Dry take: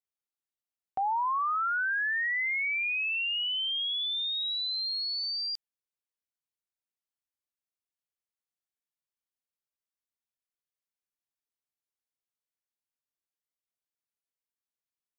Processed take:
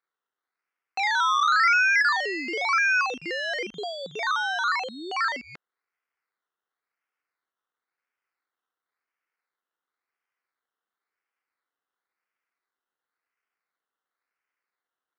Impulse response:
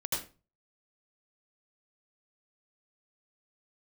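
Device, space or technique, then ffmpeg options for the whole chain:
circuit-bent sampling toy: -af "acrusher=samples=15:mix=1:aa=0.000001:lfo=1:lforange=9:lforate=0.95,highpass=590,equalizer=frequency=610:width_type=q:width=4:gain=-10,equalizer=frequency=880:width_type=q:width=4:gain=-5,equalizer=frequency=1400:width_type=q:width=4:gain=4,equalizer=frequency=2100:width_type=q:width=4:gain=5,equalizer=frequency=3400:width_type=q:width=4:gain=-3,lowpass=frequency=4900:width=0.5412,lowpass=frequency=4900:width=1.3066,volume=7dB"

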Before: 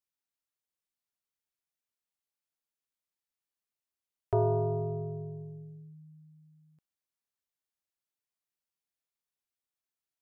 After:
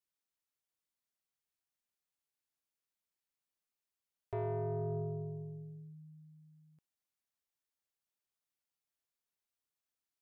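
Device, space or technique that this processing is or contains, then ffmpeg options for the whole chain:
soft clipper into limiter: -af "asoftclip=type=tanh:threshold=-24dB,alimiter=level_in=8dB:limit=-24dB:level=0:latency=1,volume=-8dB,volume=-1.5dB"

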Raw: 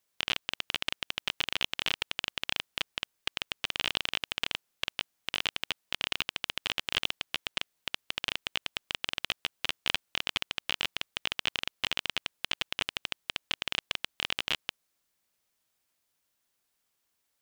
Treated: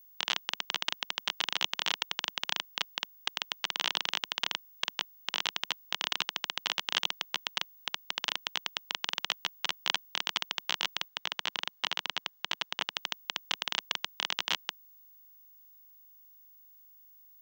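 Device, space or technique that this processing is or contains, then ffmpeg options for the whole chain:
old television with a line whistle: -filter_complex "[0:a]highpass=frequency=200:width=0.5412,highpass=frequency=200:width=1.3066,equalizer=frequency=250:width_type=q:width=4:gain=-6,equalizer=frequency=370:width_type=q:width=4:gain=-9,equalizer=frequency=550:width_type=q:width=4:gain=-5,equalizer=frequency=980:width_type=q:width=4:gain=4,equalizer=frequency=2500:width_type=q:width=4:gain=-6,equalizer=frequency=6000:width_type=q:width=4:gain=5,lowpass=frequency=7900:width=0.5412,lowpass=frequency=7900:width=1.3066,aeval=exprs='val(0)+0.00158*sin(2*PI*15625*n/s)':channel_layout=same,asettb=1/sr,asplit=3[link_01][link_02][link_03];[link_01]atrim=end=11.084[link_04];[link_02]atrim=start=11.08:end=12.95,asetpts=PTS-STARTPTS,afade=type=in:duration=0.004:curve=qsin,afade=type=out:start_time=1.866:duration=0.004:curve=qsin,highshelf=frequency=5800:gain=-7.5[link_05];[link_03]atrim=start=12.946[link_06];[link_04][link_05]acrossfade=duration=0.004:curve1=hsin:curve2=qsin[link_07];[link_07][link_06]acrossfade=duration=0.004:curve1=qsin:curve2=hsin,volume=1.5dB"

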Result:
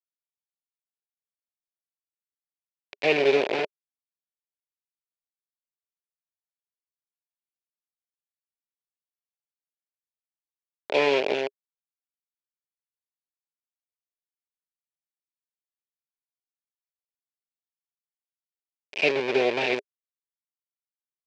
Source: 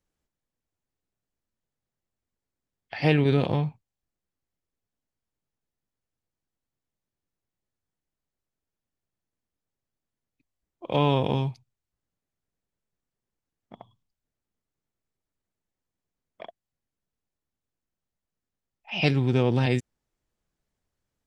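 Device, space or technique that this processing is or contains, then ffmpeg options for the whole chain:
hand-held game console: -af "acrusher=bits=3:mix=0:aa=0.000001,highpass=400,equalizer=frequency=410:width_type=q:width=4:gain=10,equalizer=frequency=590:width_type=q:width=4:gain=7,equalizer=frequency=1200:width_type=q:width=4:gain=-8,equalizer=frequency=2400:width_type=q:width=4:gain=10,lowpass=frequency=4600:width=0.5412,lowpass=frequency=4600:width=1.3066,volume=-2.5dB"

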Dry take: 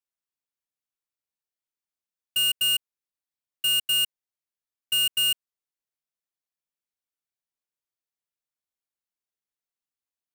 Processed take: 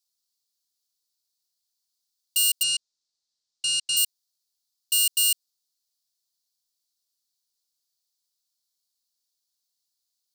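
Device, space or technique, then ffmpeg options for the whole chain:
over-bright horn tweeter: -filter_complex "[0:a]highshelf=frequency=3100:width_type=q:width=3:gain=13,alimiter=limit=-11.5dB:level=0:latency=1:release=24,asettb=1/sr,asplit=3[link_01][link_02][link_03];[link_01]atrim=end=2.634[link_04];[link_02]atrim=start=2.63:end=3.97,asetpts=PTS-STARTPTS,afade=type=in:duration=0.004:curve=qsin,afade=type=out:start_time=1.336:duration=0.004:curve=qsin,lowpass=frequency=7500:width=0.5412,lowpass=frequency=7500:width=1.3066[link_05];[link_03]atrim=start=3.966[link_06];[link_04][link_05]acrossfade=duration=0.004:curve1=hsin:curve2=qsin[link_07];[link_07][link_06]acrossfade=duration=0.004:curve1=qsin:curve2=hsin,volume=-1.5dB"

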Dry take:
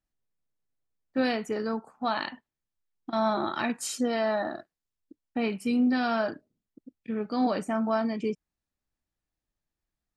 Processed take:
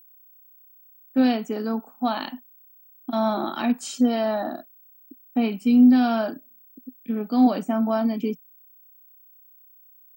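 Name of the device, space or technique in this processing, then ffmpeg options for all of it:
old television with a line whistle: -af "highpass=frequency=160:width=0.5412,highpass=frequency=160:width=1.3066,equalizer=frequency=170:width_type=q:width=4:gain=4,equalizer=frequency=250:width_type=q:width=4:gain=10,equalizer=frequency=730:width_type=q:width=4:gain=5,equalizer=frequency=1900:width_type=q:width=4:gain=-5,equalizer=frequency=3200:width_type=q:width=4:gain=5,lowpass=frequency=8400:width=0.5412,lowpass=frequency=8400:width=1.3066,aeval=exprs='val(0)+0.00316*sin(2*PI*15734*n/s)':channel_layout=same"

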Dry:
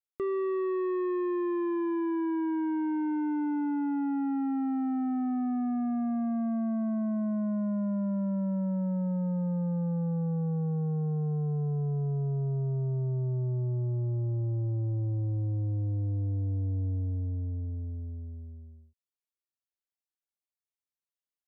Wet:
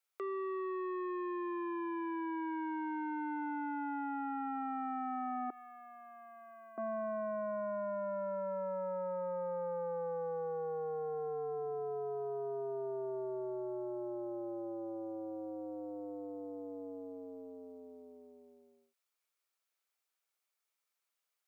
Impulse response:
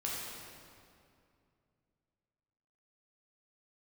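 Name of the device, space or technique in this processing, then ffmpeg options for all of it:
laptop speaker: -filter_complex "[0:a]asettb=1/sr,asplit=3[link_01][link_02][link_03];[link_01]atrim=end=5.504[link_04];[link_02]atrim=start=5.5:end=6.78,asetpts=PTS-STARTPTS,afade=type=in:duration=0.004:curve=qsin,afade=type=out:start_time=1.276:duration=0.004:curve=qsin,aderivative[link_05];[link_03]atrim=start=6.776[link_06];[link_04][link_05]acrossfade=duration=0.004:curve1=hsin:curve2=qsin[link_07];[link_07][link_06]acrossfade=duration=0.004:curve1=qsin:curve2=hsin,highpass=frequency=410:width=0.5412,highpass=frequency=410:width=1.3066,equalizer=frequency=1300:width_type=o:width=0.31:gain=6,equalizer=frequency=2300:width_type=o:width=0.2:gain=5,alimiter=level_in=16dB:limit=-24dB:level=0:latency=1:release=76,volume=-16dB,volume=7.5dB"

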